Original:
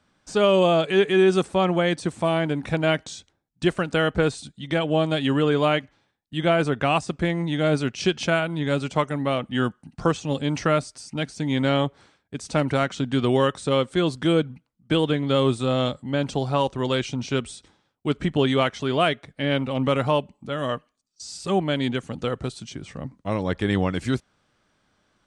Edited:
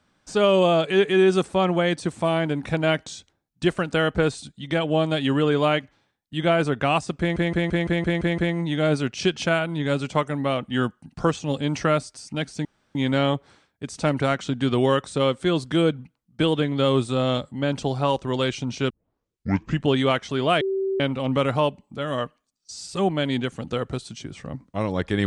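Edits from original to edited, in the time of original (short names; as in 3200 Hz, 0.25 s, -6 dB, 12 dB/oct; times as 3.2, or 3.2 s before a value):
7.19 stutter 0.17 s, 8 plays
11.46 insert room tone 0.30 s
17.41 tape start 0.96 s
19.12–19.51 bleep 386 Hz -21.5 dBFS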